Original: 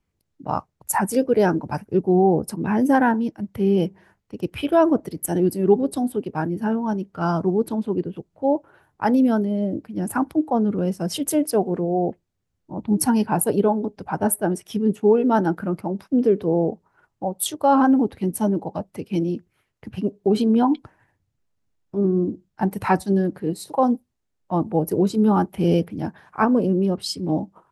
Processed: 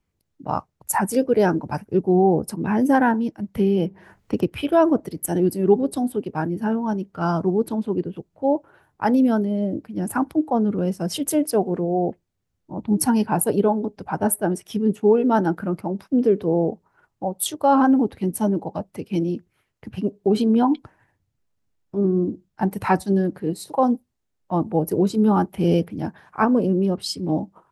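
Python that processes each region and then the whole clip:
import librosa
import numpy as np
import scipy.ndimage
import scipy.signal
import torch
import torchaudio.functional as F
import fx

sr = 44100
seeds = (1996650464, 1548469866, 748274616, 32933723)

y = fx.chain(x, sr, fx.dynamic_eq(hz=7500.0, q=1.3, threshold_db=-58.0, ratio=4.0, max_db=-6),
    fx.band_squash(depth_pct=100), at=(3.56, 4.52))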